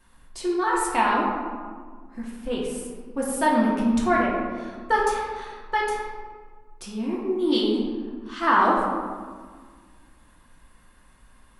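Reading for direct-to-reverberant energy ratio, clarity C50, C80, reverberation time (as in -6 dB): -4.5 dB, 1.0 dB, 2.5 dB, 1.6 s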